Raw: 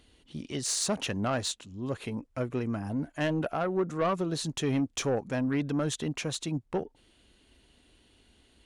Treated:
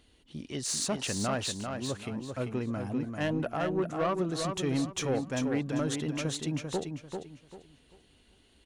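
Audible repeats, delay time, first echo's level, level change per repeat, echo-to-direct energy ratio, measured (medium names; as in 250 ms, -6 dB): 3, 393 ms, -5.5 dB, -11.0 dB, -5.0 dB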